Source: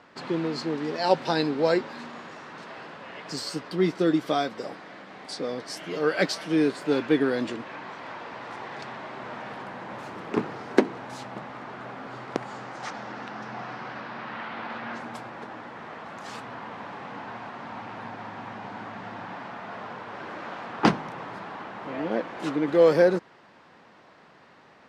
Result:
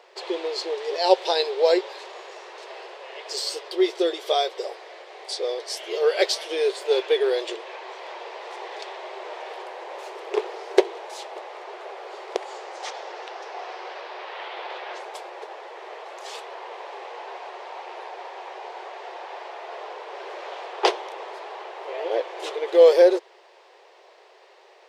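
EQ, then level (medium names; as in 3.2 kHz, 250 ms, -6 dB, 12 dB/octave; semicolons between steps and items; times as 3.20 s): brick-wall FIR high-pass 350 Hz; dynamic bell 3.4 kHz, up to +5 dB, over -53 dBFS, Q 4.4; peaking EQ 1.4 kHz -11.5 dB 0.97 oct; +6.0 dB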